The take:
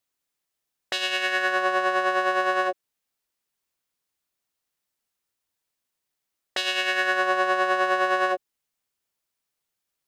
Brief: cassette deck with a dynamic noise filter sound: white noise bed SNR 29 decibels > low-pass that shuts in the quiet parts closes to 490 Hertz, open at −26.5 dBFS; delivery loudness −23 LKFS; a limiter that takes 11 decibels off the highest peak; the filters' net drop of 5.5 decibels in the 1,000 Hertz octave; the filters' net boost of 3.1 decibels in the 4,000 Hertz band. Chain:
parametric band 1,000 Hz −7.5 dB
parametric band 4,000 Hz +5 dB
brickwall limiter −19.5 dBFS
white noise bed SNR 29 dB
low-pass that shuts in the quiet parts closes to 490 Hz, open at −26.5 dBFS
level +7.5 dB

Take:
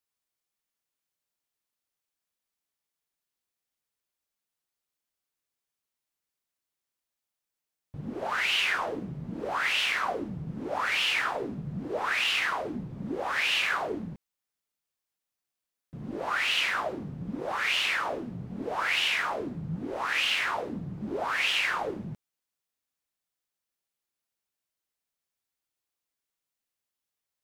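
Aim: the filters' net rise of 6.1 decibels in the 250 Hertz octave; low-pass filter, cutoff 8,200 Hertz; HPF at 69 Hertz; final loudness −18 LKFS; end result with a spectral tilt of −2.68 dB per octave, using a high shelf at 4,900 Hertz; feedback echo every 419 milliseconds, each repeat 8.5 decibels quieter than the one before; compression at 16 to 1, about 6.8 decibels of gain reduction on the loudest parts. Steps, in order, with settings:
high-pass filter 69 Hz
low-pass filter 8,200 Hz
parametric band 250 Hz +8 dB
high-shelf EQ 4,900 Hz +3.5 dB
downward compressor 16 to 1, threshold −29 dBFS
repeating echo 419 ms, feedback 38%, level −8.5 dB
level +14.5 dB

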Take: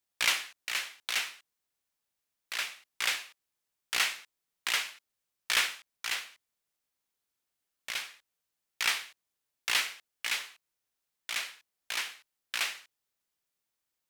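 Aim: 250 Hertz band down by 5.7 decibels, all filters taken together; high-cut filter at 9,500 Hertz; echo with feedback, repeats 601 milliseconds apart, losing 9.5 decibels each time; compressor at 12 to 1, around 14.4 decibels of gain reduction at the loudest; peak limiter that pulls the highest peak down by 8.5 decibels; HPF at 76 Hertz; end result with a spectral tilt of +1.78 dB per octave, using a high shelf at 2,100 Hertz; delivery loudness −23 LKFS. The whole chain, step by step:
high-pass filter 76 Hz
low-pass filter 9,500 Hz
parametric band 250 Hz −8.5 dB
high-shelf EQ 2,100 Hz +6.5 dB
downward compressor 12 to 1, threshold −33 dBFS
brickwall limiter −22.5 dBFS
repeating echo 601 ms, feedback 33%, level −9.5 dB
level +18 dB

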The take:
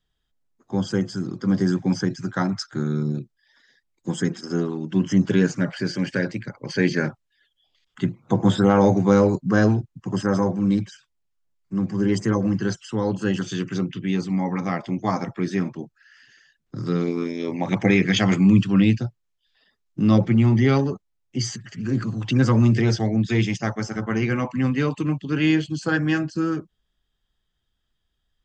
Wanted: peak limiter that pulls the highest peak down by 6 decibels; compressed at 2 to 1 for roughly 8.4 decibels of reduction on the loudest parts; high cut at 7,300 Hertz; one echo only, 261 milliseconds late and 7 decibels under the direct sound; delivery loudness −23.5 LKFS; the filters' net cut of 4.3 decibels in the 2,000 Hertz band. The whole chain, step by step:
low-pass filter 7,300 Hz
parametric band 2,000 Hz −5.5 dB
downward compressor 2 to 1, threshold −28 dBFS
brickwall limiter −18.5 dBFS
single-tap delay 261 ms −7 dB
level +5.5 dB

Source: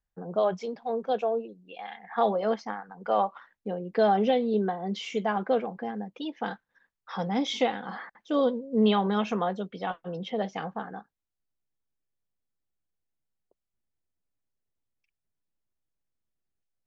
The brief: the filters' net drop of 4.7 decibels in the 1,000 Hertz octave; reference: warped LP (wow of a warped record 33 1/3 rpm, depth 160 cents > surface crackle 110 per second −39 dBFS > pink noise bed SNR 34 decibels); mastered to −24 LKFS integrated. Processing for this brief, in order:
parametric band 1,000 Hz −7 dB
wow of a warped record 33 1/3 rpm, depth 160 cents
surface crackle 110 per second −39 dBFS
pink noise bed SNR 34 dB
level +6.5 dB

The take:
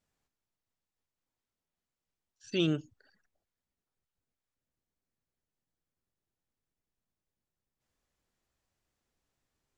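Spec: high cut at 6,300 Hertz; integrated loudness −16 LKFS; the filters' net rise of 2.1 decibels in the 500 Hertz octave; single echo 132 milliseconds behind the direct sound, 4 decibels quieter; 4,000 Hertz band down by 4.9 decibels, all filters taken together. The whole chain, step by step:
low-pass filter 6,300 Hz
parametric band 500 Hz +3.5 dB
parametric band 4,000 Hz −6.5 dB
single-tap delay 132 ms −4 dB
level +15 dB

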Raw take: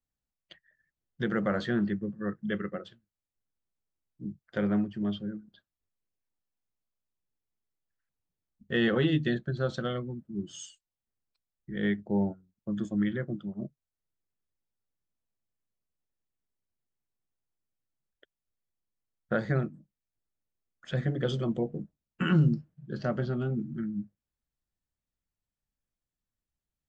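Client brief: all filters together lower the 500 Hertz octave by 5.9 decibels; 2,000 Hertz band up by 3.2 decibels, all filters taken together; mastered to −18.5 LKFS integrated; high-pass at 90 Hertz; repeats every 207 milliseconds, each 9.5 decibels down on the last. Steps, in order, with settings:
high-pass filter 90 Hz
parametric band 500 Hz −8 dB
parametric band 2,000 Hz +4.5 dB
repeating echo 207 ms, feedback 33%, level −9.5 dB
level +14 dB

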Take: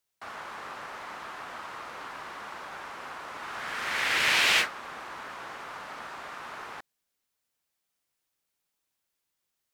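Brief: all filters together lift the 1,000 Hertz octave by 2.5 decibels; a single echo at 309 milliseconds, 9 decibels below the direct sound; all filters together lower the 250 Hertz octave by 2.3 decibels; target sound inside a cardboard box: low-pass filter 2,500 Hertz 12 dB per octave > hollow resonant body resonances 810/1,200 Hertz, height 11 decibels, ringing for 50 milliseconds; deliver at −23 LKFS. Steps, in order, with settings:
low-pass filter 2,500 Hz 12 dB per octave
parametric band 250 Hz −3.5 dB
parametric band 1,000 Hz +3.5 dB
single-tap delay 309 ms −9 dB
hollow resonant body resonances 810/1,200 Hz, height 11 dB, ringing for 50 ms
level +7 dB

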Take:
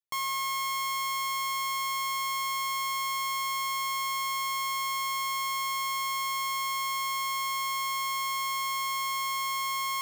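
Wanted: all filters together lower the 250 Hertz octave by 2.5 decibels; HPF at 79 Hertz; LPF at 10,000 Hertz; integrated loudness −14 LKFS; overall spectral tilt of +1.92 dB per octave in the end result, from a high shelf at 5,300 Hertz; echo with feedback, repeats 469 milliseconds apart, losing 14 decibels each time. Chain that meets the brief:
high-pass filter 79 Hz
low-pass filter 10,000 Hz
parametric band 250 Hz −4.5 dB
high-shelf EQ 5,300 Hz +6.5 dB
repeating echo 469 ms, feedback 20%, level −14 dB
level +14.5 dB

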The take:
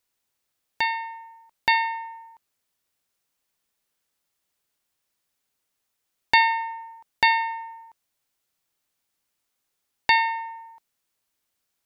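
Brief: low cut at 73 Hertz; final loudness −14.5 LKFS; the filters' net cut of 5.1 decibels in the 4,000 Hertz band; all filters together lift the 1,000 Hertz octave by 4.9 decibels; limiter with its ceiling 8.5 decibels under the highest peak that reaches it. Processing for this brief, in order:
high-pass filter 73 Hz
parametric band 1,000 Hz +5.5 dB
parametric band 4,000 Hz −6 dB
level +10 dB
brickwall limiter −2.5 dBFS

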